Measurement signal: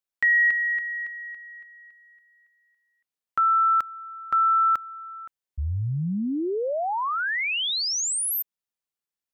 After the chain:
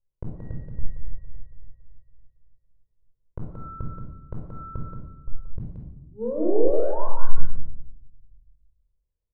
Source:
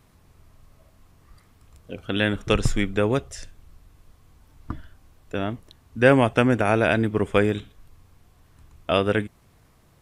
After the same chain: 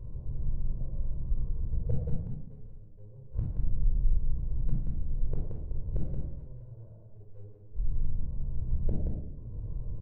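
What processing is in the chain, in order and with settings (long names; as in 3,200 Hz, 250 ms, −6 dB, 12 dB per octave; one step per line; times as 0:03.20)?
lower of the sound and its delayed copy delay 2 ms
spectral tilt −3.5 dB per octave
in parallel at 0 dB: downward compressor 6 to 1, threshold −26 dBFS
on the sum: Gaussian smoothing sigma 11 samples
hard clipping −4.5 dBFS
gate with flip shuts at −15 dBFS, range −40 dB
single-tap delay 177 ms −5 dB
rectangular room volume 2,000 cubic metres, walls furnished, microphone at 5 metres
level −6 dB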